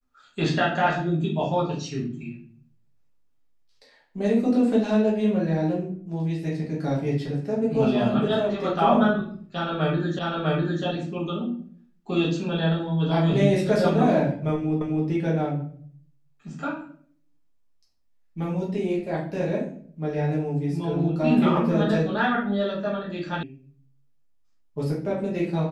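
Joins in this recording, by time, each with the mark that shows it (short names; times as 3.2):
10.19 repeat of the last 0.65 s
14.81 repeat of the last 0.26 s
23.43 sound cut off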